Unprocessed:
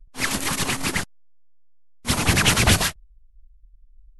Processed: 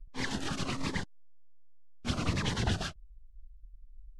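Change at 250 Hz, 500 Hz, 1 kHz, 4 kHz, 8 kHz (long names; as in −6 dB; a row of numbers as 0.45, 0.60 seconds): −9.0, −11.0, −12.5, −14.5, −20.5 decibels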